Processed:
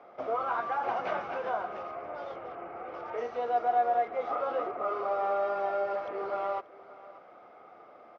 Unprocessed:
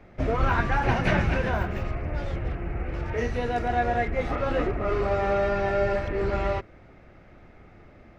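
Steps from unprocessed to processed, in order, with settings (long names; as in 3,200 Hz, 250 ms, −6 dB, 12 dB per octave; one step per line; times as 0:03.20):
downward compressor 2 to 1, threshold −34 dBFS, peak gain reduction 9.5 dB
loudspeaker in its box 490–4,800 Hz, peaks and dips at 490 Hz +5 dB, 730 Hz +8 dB, 1,200 Hz +9 dB, 1,800 Hz −10 dB, 2,600 Hz −7 dB, 4,100 Hz −7 dB
single-tap delay 583 ms −19.5 dB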